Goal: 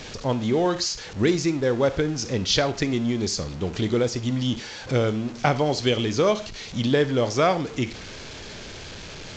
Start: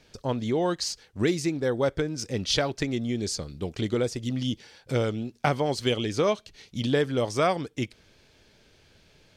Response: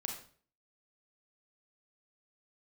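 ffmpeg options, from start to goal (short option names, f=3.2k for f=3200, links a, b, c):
-filter_complex "[0:a]aeval=exprs='val(0)+0.5*0.0158*sgn(val(0))':c=same,asplit=2[a][b];[1:a]atrim=start_sample=2205,atrim=end_sample=6174[c];[b][c]afir=irnorm=-1:irlink=0,volume=-6.5dB[d];[a][d]amix=inputs=2:normalize=0" -ar 16000 -c:a pcm_alaw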